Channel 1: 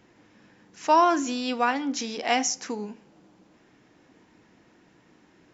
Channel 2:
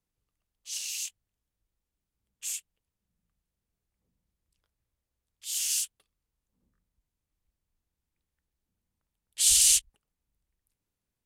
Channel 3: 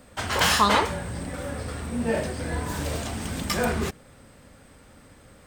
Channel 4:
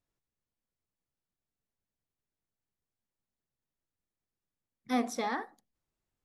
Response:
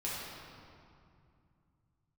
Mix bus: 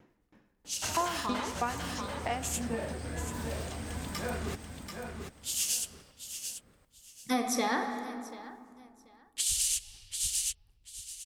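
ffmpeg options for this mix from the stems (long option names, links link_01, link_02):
-filter_complex "[0:a]highshelf=frequency=2800:gain=-11.5,aeval=exprs='val(0)*pow(10,-32*if(lt(mod(3.1*n/s,1),2*abs(3.1)/1000),1-mod(3.1*n/s,1)/(2*abs(3.1)/1000),(mod(3.1*n/s,1)-2*abs(3.1)/1000)/(1-2*abs(3.1)/1000))/20)':channel_layout=same,volume=-0.5dB,asplit=2[link_01][link_02];[link_02]volume=-16dB[link_03];[1:a]lowshelf=frequency=460:gain=8.5,tremolo=f=8.2:d=0.54,volume=1dB,asplit=3[link_04][link_05][link_06];[link_05]volume=-19.5dB[link_07];[link_06]volume=-9.5dB[link_08];[2:a]alimiter=limit=-16dB:level=0:latency=1:release=215,adelay=650,volume=-9dB,asplit=2[link_09][link_10];[link_10]volume=-5.5dB[link_11];[3:a]aemphasis=mode=production:type=cd,adelay=2400,volume=3dB,asplit=3[link_12][link_13][link_14];[link_13]volume=-8.5dB[link_15];[link_14]volume=-18dB[link_16];[4:a]atrim=start_sample=2205[link_17];[link_03][link_07][link_15]amix=inputs=3:normalize=0[link_18];[link_18][link_17]afir=irnorm=-1:irlink=0[link_19];[link_08][link_11][link_16]amix=inputs=3:normalize=0,aecho=0:1:736|1472|2208|2944:1|0.22|0.0484|0.0106[link_20];[link_01][link_04][link_09][link_12][link_19][link_20]amix=inputs=6:normalize=0,alimiter=limit=-19dB:level=0:latency=1:release=223"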